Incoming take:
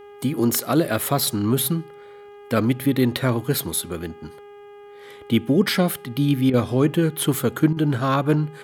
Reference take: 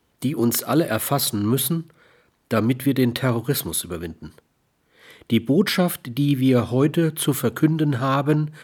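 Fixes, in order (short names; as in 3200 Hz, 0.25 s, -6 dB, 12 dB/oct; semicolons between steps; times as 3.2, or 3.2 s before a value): de-hum 408.9 Hz, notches 8; interpolate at 6.5/7.73, 36 ms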